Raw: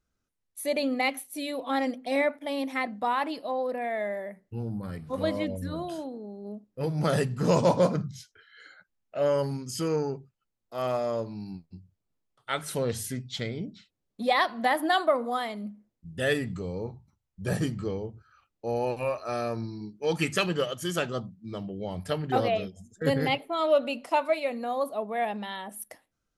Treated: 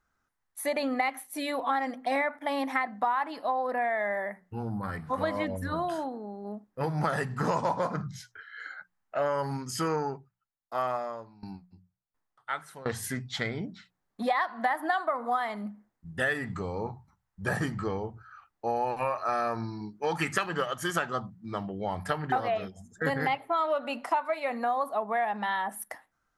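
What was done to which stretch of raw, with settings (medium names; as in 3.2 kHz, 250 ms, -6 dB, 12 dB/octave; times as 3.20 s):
10.00–13.03 s: sawtooth tremolo in dB decaying 1.4 Hz, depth 20 dB
whole clip: high-order bell 1.2 kHz +11 dB; hum notches 60/120/180 Hz; compression 6:1, threshold -25 dBFS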